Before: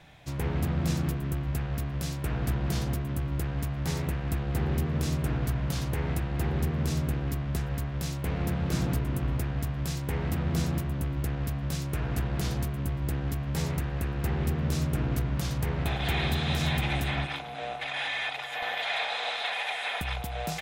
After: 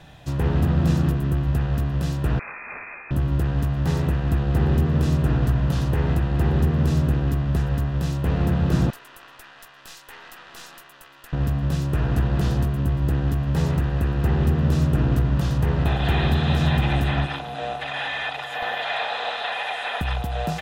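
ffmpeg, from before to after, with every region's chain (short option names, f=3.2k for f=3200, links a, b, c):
-filter_complex "[0:a]asettb=1/sr,asplit=3[a][b][c];[a]atrim=end=2.394[d];[b]atrim=start=2.39:end=3.11,asetpts=PTS-STARTPTS,afade=t=in:d=0.004:c=qsin,afade=t=out:st=0.716:d=0.004:c=qsin,highpass=f=360:w=0.5412,highpass=f=360:w=1.3066,lowpass=f=2.4k:t=q:w=0.5098,lowpass=f=2.4k:t=q:w=0.6013,lowpass=f=2.4k:t=q:w=0.9,lowpass=f=2.4k:t=q:w=2.563,afreqshift=-2800[e];[c]atrim=start=3.106[f];[d][e]acrossfade=d=0.004:c1=hsin:c2=qsin[g];[g][f]acrossfade=d=0.004:c1=qsin:c2=hsin,asettb=1/sr,asplit=3[h][i][j];[h]atrim=end=8.904[k];[i]atrim=start=8.9:end=11.33,asetpts=PTS-STARTPTS,afade=t=in:d=0.004:c=qsin,afade=t=out:st=2.426:d=0.004:c=qsin,highpass=1.3k,aeval=exprs='(tanh(28.2*val(0)+0.7)-tanh(0.7))/28.2':c=same[l];[j]atrim=start=11.326[m];[k][l]acrossfade=d=0.004:c1=hsin:c2=qsin[n];[n][m]acrossfade=d=0.004:c1=qsin:c2=hsin,bandreject=f=2.2k:w=5.7,acrossover=split=3200[o][p];[p]acompressor=threshold=-48dB:ratio=4:attack=1:release=60[q];[o][q]amix=inputs=2:normalize=0,lowshelf=f=370:g=3,volume=6dB"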